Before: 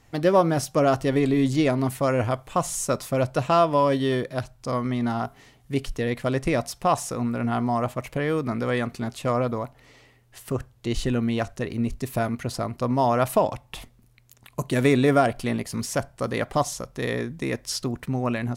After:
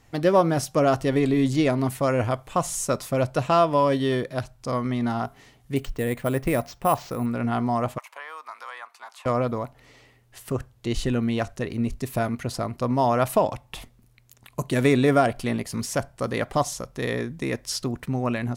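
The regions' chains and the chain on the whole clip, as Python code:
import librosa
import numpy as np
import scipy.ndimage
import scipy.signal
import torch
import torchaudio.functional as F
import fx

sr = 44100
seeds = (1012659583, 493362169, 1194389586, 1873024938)

y = fx.chain(x, sr, fx.bessel_lowpass(hz=3700.0, order=2),
    fx.resample_bad(factor=4, down='none', up='hold'), at=(5.76, 7.26))
y = fx.chain(y, sr, fx.ladder_highpass(hz=870.0, resonance_pct=60),
    fx.band_squash(depth_pct=100), at=(7.98, 9.26))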